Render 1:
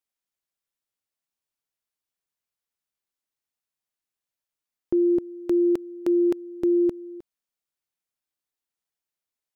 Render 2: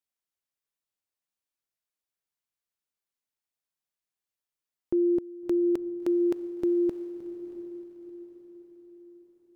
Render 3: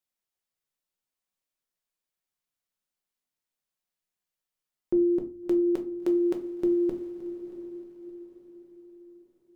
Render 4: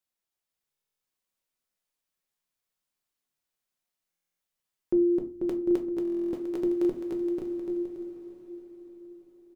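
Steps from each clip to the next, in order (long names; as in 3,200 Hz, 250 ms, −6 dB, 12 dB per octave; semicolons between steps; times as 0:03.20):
feedback delay with all-pass diffusion 689 ms, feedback 42%, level −12.5 dB; level −3.5 dB
rectangular room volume 160 cubic metres, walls furnished, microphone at 1 metre
on a send: bouncing-ball delay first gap 490 ms, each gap 0.6×, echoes 5; on the sum: buffer that repeats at 0:00.71/0:04.10/0:06.03, samples 1,024, times 12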